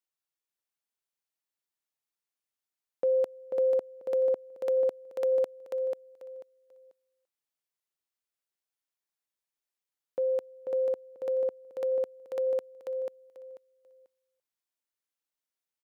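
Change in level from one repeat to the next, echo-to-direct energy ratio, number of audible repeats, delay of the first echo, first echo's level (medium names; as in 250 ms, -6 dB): -13.5 dB, -5.0 dB, 3, 490 ms, -5.0 dB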